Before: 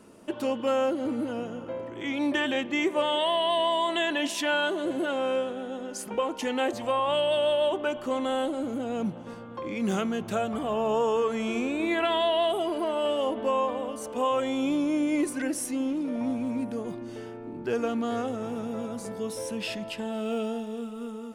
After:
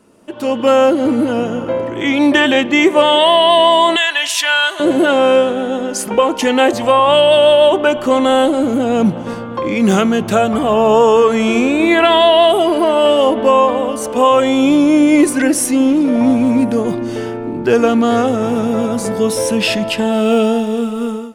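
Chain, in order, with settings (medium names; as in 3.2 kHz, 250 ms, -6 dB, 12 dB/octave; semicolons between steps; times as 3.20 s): 3.96–4.80 s: high-pass 1.3 kHz 12 dB/octave; level rider gain up to 17 dB; trim +1 dB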